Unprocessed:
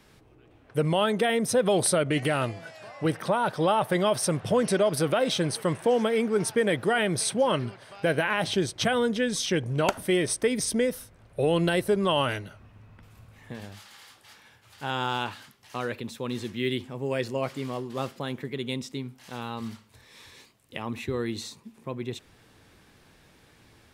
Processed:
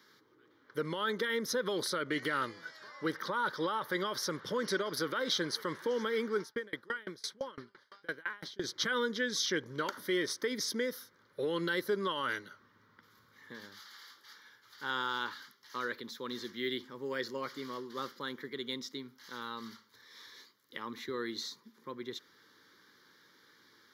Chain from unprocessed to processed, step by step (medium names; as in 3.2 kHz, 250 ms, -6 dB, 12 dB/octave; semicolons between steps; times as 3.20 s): high-pass 390 Hz 12 dB/octave; peak limiter -18 dBFS, peak gain reduction 7.5 dB; static phaser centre 2.6 kHz, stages 6; 6.39–8.64 s: sawtooth tremolo in dB decaying 5.9 Hz, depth 29 dB